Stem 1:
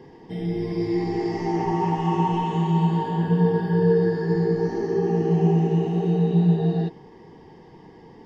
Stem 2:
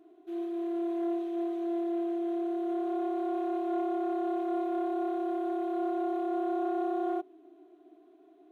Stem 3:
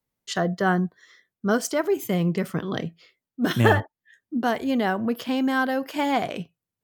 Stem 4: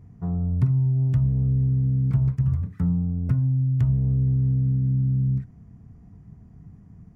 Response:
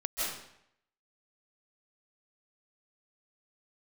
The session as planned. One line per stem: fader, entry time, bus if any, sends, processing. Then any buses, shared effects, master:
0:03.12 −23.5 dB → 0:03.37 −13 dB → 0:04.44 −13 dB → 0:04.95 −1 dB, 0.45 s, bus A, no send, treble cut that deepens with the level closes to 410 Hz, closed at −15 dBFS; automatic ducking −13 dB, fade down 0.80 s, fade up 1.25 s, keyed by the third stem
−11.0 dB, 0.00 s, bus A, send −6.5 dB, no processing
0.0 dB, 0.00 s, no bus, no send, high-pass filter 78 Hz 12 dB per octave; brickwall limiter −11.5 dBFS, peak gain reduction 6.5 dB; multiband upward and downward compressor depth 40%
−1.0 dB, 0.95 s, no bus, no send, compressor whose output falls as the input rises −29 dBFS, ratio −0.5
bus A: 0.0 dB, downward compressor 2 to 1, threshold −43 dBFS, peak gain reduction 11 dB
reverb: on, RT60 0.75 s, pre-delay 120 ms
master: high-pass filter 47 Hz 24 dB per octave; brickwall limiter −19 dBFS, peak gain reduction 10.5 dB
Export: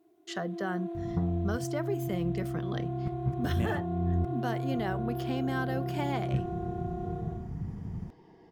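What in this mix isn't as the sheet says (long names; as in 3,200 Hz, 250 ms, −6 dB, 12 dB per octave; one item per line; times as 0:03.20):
stem 1 −23.5 dB → −33.0 dB
stem 3 0.0 dB → −10.5 dB
master: missing high-pass filter 47 Hz 24 dB per octave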